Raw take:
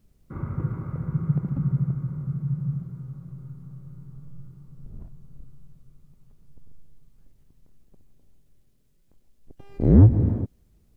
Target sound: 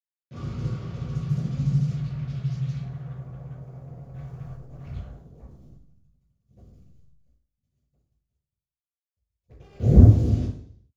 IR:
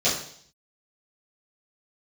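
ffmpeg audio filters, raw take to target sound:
-filter_complex "[0:a]agate=range=-13dB:threshold=-43dB:ratio=16:detection=peak,asubboost=boost=5.5:cutoff=86,asettb=1/sr,asplit=3[a][b][c];[a]atrim=end=4.144[d];[b]atrim=start=4.14:end=4.98,asetpts=PTS-STARTPTS,afade=t=in:d=0.004:c=qsin,afade=t=out:st=0.836:d=0.004:c=qsin,acontrast=59[e];[c]atrim=start=4.976[f];[d][e]acrossfade=d=0.004:c1=hsin:c2=qsin[g];[g][f]acrossfade=d=0.004:c1=qsin:c2=hsin,acrusher=bits=6:mix=0:aa=0.5[h];[1:a]atrim=start_sample=2205[i];[h][i]afir=irnorm=-1:irlink=0,volume=-17dB"

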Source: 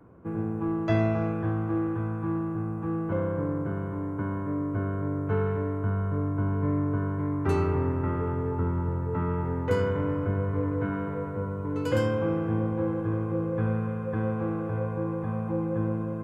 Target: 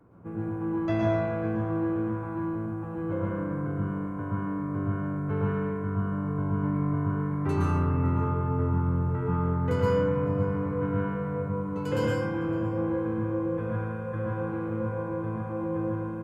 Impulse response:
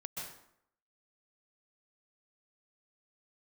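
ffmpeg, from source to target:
-filter_complex "[0:a]aecho=1:1:559:0.0708[a];[1:a]atrim=start_sample=2205,afade=t=out:st=0.36:d=0.01,atrim=end_sample=16317,asetrate=48510,aresample=44100[b];[a][b]afir=irnorm=-1:irlink=0,volume=1.5dB"

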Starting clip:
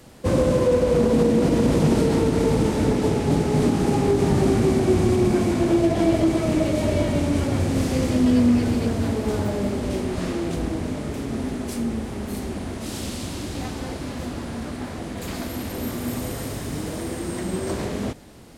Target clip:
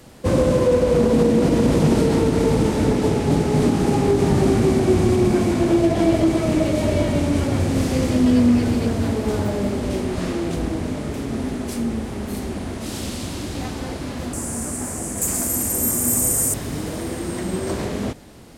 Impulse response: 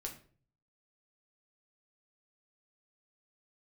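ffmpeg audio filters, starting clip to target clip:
-filter_complex "[0:a]asettb=1/sr,asplit=3[a][b][c];[a]atrim=end=14.334[d];[b]atrim=start=14.33:end=16.54,asetpts=PTS-STARTPTS,afade=t=in:d=0.004:c=qsin,afade=t=out:st=2.206:d=0.004:c=qsin,highshelf=f=5.6k:t=q:w=3:g=13.5[e];[c]atrim=start=16.536[f];[d][e]acrossfade=d=0.004:c1=hsin:c2=qsin[g];[g][f]acrossfade=d=0.004:c1=qsin:c2=hsin,volume=2dB"

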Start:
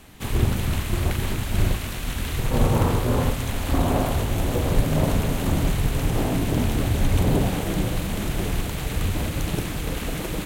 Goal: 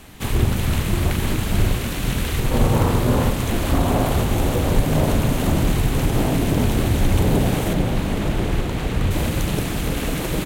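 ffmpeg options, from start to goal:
-filter_complex "[0:a]asettb=1/sr,asplit=3[a][b][c];[a]atrim=end=7.734[d];[b]atrim=start=7.73:end=9.11,asetpts=PTS-STARTPTS,afade=t=in:d=0.004:c=qsin,afade=t=out:st=1.376:d=0.004:c=qsin,lowpass=f=3.1k:p=1[e];[c]atrim=start=9.106[f];[d][e]acrossfade=d=0.004:c1=hsin:c2=qsin[g];[g][f]acrossfade=d=0.004:c1=qsin:c2=hsin,asplit=2[h][i];[i]alimiter=limit=-17.5dB:level=0:latency=1:release=332,volume=-3dB[j];[h][j]amix=inputs=2:normalize=0,asplit=7[k][l][m][n][o][p][q];[l]adelay=452,afreqshift=100,volume=-11.5dB[r];[m]adelay=904,afreqshift=200,volume=-16.7dB[s];[n]adelay=1356,afreqshift=300,volume=-21.9dB[t];[o]adelay=1808,afreqshift=400,volume=-27.1dB[u];[p]adelay=2260,afreqshift=500,volume=-32.3dB[v];[q]adelay=2712,afreqshift=600,volume=-37.5dB[w];[k][r][s][t][u][v][w]amix=inputs=7:normalize=0"

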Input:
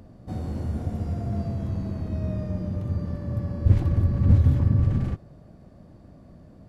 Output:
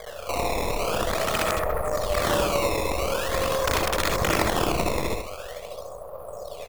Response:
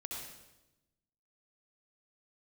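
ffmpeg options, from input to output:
-filter_complex "[0:a]aecho=1:1:1.5:0.9,afreqshift=-42,equalizer=f=610:t=o:w=2.6:g=11.5,asplit=2[a][b];[b]acontrast=29,volume=-1dB[c];[a][c]amix=inputs=2:normalize=0,aeval=exprs='max(val(0),0)':c=same,equalizer=f=125:t=o:w=1:g=-3,equalizer=f=250:t=o:w=1:g=-11,equalizer=f=500:t=o:w=1:g=11,equalizer=f=1k:t=o:w=1:g=12,equalizer=f=2k:t=o:w=1:g=-10,acrusher=samples=16:mix=1:aa=0.000001:lfo=1:lforange=25.6:lforate=0.45,aeval=exprs='2.11*(cos(1*acos(clip(val(0)/2.11,-1,1)))-cos(1*PI/2))+0.15*(cos(3*acos(clip(val(0)/2.11,-1,1)))-cos(3*PI/2))+0.596*(cos(7*acos(clip(val(0)/2.11,-1,1)))-cos(7*PI/2))':c=same,aeval=exprs='(mod(1.33*val(0)+1,2)-1)/1.33':c=same,asplit=2[d][e];[e]adelay=128.3,volume=-15dB,highshelf=f=4k:g=-2.89[f];[d][f]amix=inputs=2:normalize=0[g];[1:a]atrim=start_sample=2205,afade=t=out:st=0.13:d=0.01,atrim=end_sample=6174[h];[g][h]afir=irnorm=-1:irlink=0,volume=-5.5dB"

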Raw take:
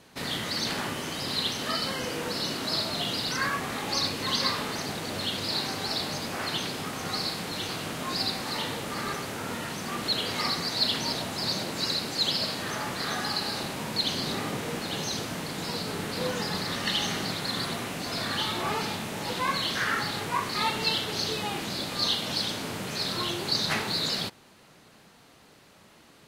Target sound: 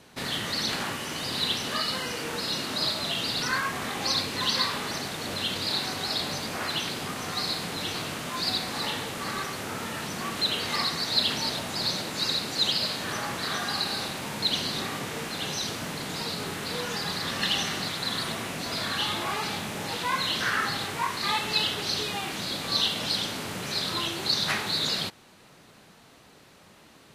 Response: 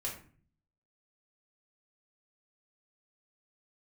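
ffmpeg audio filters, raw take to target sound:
-filter_complex "[0:a]acrossover=split=950[a][b];[a]alimiter=level_in=5.5dB:limit=-24dB:level=0:latency=1:release=399,volume=-5.5dB[c];[c][b]amix=inputs=2:normalize=0,asetrate=42689,aresample=44100,volume=1.5dB"

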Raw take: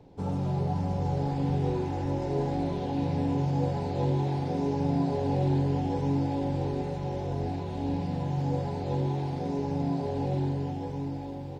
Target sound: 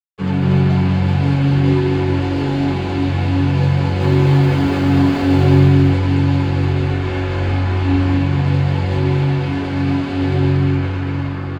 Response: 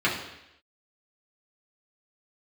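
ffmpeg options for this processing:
-filter_complex "[0:a]asettb=1/sr,asplit=3[a][b][c];[a]atrim=end=4.024[d];[b]atrim=start=4.02:end=5.68,asetpts=PTS-STARTPTS,afade=t=in:d=0.004:c=qsin,afade=t=out:st=1.656:d=0.004:c=qsin,aeval=exprs='val(0)+0.5*0.0299*sgn(val(0))':c=same[e];[c]atrim=start=5.676[f];[d][e]acrossfade=d=0.004:c1=hsin:c2=qsin[g];[g][f]acrossfade=d=0.004:c1=qsin:c2=hsin,asubboost=boost=9.5:cutoff=50,acrusher=bits=5:mix=0:aa=0.5,asettb=1/sr,asplit=3[h][i][j];[h]atrim=end=6.864[k];[i]atrim=start=6.86:end=8.16,asetpts=PTS-STARTPTS,afade=t=in:d=0.004:c=qsin,afade=t=out:st=1.296:d=0.004:c=qsin,asplit=2[l][m];[m]adelay=40,volume=-3.5dB[n];[l][n]amix=inputs=2:normalize=0,atrim=end_sample=57330[o];[j]atrim=start=8.156[p];[k][o]acrossfade=d=0.004:c1=hsin:c2=qsin[q];[q][p]acrossfade=d=0.004:c1=qsin:c2=hsin,aecho=1:1:237:0.668[r];[1:a]atrim=start_sample=2205,atrim=end_sample=3087[s];[r][s]afir=irnorm=-1:irlink=0,volume=-3dB"

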